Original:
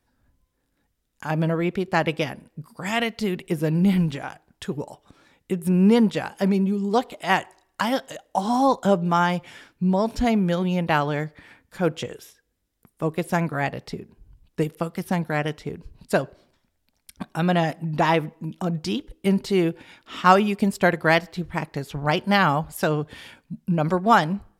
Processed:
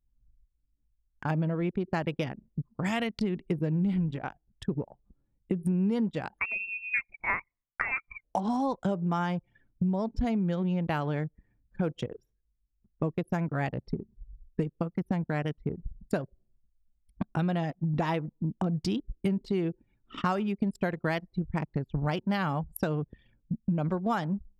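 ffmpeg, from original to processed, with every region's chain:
-filter_complex "[0:a]asettb=1/sr,asplit=3[s0][s1][s2];[s0]atrim=end=6.394[s3];[s1]atrim=start=6.39:end=8.24,asetpts=PTS-STARTPTS,afade=t=in:d=0.004:c=qsin,afade=t=out:st=1.846:d=0.004:c=qsin,highpass=470,lowpass=f=2500:t=q:w=0.5098,lowpass=f=2500:t=q:w=0.6013,lowpass=f=2500:t=q:w=0.9,lowpass=f=2500:t=q:w=2.563,afreqshift=-2900[s4];[s2]atrim=start=8.236[s5];[s3][s4]acrossfade=d=0.004:c1=hsin:c2=qsin[s6];[s6][s5]acrossfade=d=0.004:c1=qsin:c2=hsin,anlmdn=25.1,lowshelf=f=320:g=8,acompressor=threshold=0.0447:ratio=5"

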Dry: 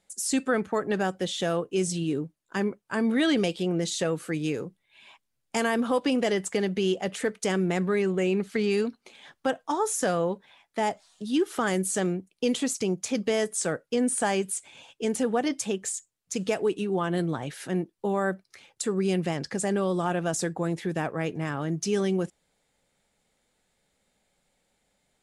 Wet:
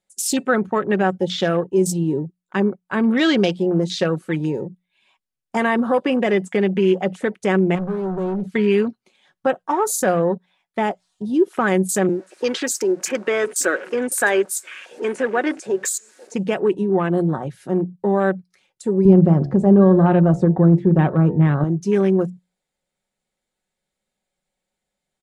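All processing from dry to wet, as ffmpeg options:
-filter_complex "[0:a]asettb=1/sr,asplit=3[s0][s1][s2];[s0]atrim=end=7.754[s3];[s1]atrim=start=7.75:end=8.5,asetpts=PTS-STARTPTS,afade=t=in:d=0.004:c=qsin,afade=t=out:st=0.746:d=0.004:c=qsin,lowshelf=f=210:g=11,acompressor=threshold=0.0708:ratio=8:attack=3.2:release=140:knee=1:detection=peak,asoftclip=type=hard:threshold=0.0316[s4];[s2]atrim=start=8.496[s5];[s3][s4]acrossfade=d=0.004:c1=hsin:c2=qsin[s6];[s6][s5]acrossfade=d=0.004:c1=qsin:c2=hsin,asettb=1/sr,asplit=3[s7][s8][s9];[s7]atrim=end=12.094[s10];[s8]atrim=start=12.09:end=16.34,asetpts=PTS-STARTPTS,afade=t=in:d=0.004:c=qsin,afade=t=out:st=4.246:d=0.004:c=qsin,aeval=exprs='val(0)+0.5*0.0178*sgn(val(0))':c=same,highpass=f=310:w=0.5412,highpass=f=310:w=1.3066,equalizer=f=320:t=q:w=4:g=3,equalizer=f=770:t=q:w=4:g=-6,equalizer=f=1600:t=q:w=4:g=9,equalizer=f=3200:t=q:w=4:g=-5,lowpass=f=9600:w=0.5412,lowpass=f=9600:w=1.3066,aecho=1:1:982:0.075,atrim=end_sample=187425[s11];[s9]atrim=start=16.336[s12];[s10][s11]acrossfade=d=0.004:c1=hsin:c2=qsin[s13];[s13][s12]acrossfade=d=0.004:c1=qsin:c2=hsin,asettb=1/sr,asplit=3[s14][s15][s16];[s14]atrim=end=19.054[s17];[s15]atrim=start=19.05:end=21.64,asetpts=PTS-STARTPTS,afade=t=in:d=0.004:c=qsin,afade=t=out:st=2.586:d=0.004:c=qsin,highpass=40,aemphasis=mode=reproduction:type=riaa,bandreject=f=69.13:t=h:w=4,bandreject=f=138.26:t=h:w=4,bandreject=f=207.39:t=h:w=4,bandreject=f=276.52:t=h:w=4,bandreject=f=345.65:t=h:w=4,bandreject=f=414.78:t=h:w=4,bandreject=f=483.91:t=h:w=4,bandreject=f=553.04:t=h:w=4,bandreject=f=622.17:t=h:w=4,bandreject=f=691.3:t=h:w=4,bandreject=f=760.43:t=h:w=4,bandreject=f=829.56:t=h:w=4,bandreject=f=898.69:t=h:w=4,bandreject=f=967.82:t=h:w=4,bandreject=f=1036.95:t=h:w=4,bandreject=f=1106.08:t=h:w=4,bandreject=f=1175.21:t=h:w=4,bandreject=f=1244.34:t=h:w=4,bandreject=f=1313.47:t=h:w=4,bandreject=f=1382.6:t=h:w=4[s18];[s16]atrim=start=21.636[s19];[s17][s18]acrossfade=d=0.004:c1=hsin:c2=qsin[s20];[s20][s19]acrossfade=d=0.004:c1=qsin:c2=hsin,bandreject=f=60:t=h:w=6,bandreject=f=120:t=h:w=6,bandreject=f=180:t=h:w=6,afwtdn=0.0141,aecho=1:1:5.4:0.36,volume=2.24"

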